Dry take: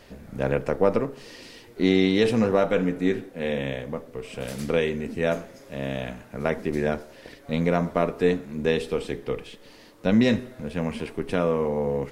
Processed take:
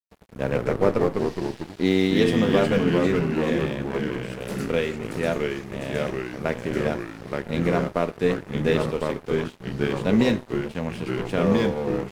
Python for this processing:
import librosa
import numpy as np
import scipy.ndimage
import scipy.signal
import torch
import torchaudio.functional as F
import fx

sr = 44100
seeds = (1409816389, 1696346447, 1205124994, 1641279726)

y = fx.echo_pitch(x, sr, ms=84, semitones=-2, count=3, db_per_echo=-3.0)
y = np.sign(y) * np.maximum(np.abs(y) - 10.0 ** (-37.0 / 20.0), 0.0)